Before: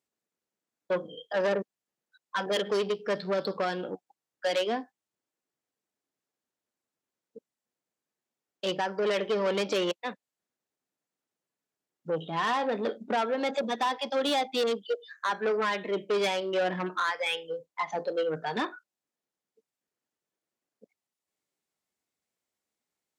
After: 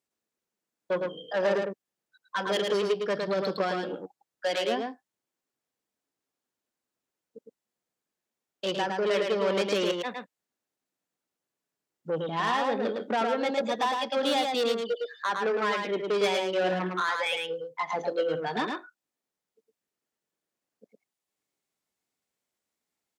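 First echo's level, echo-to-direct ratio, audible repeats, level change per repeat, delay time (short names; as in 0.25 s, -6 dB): -4.0 dB, -4.0 dB, 1, no steady repeat, 0.109 s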